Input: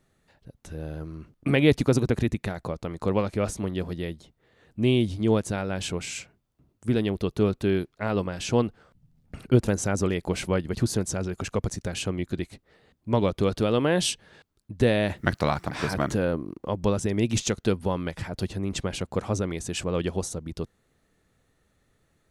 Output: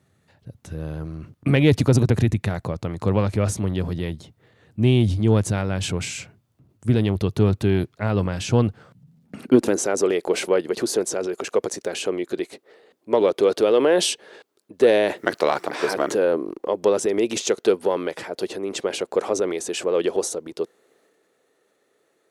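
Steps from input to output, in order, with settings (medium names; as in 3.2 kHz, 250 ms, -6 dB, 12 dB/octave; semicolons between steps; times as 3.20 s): high-pass sweep 99 Hz -> 410 Hz, 8.68–9.90 s; transient shaper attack +1 dB, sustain +5 dB; Chebyshev shaper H 5 -27 dB, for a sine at -2 dBFS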